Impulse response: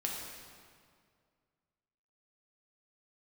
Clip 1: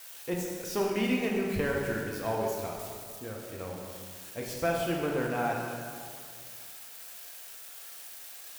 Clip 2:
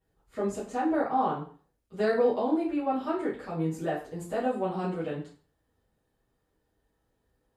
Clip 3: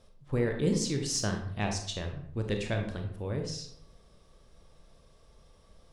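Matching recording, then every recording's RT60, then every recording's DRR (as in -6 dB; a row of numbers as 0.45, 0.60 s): 1; 2.1, 0.40, 0.75 s; -2.0, -10.5, 3.5 dB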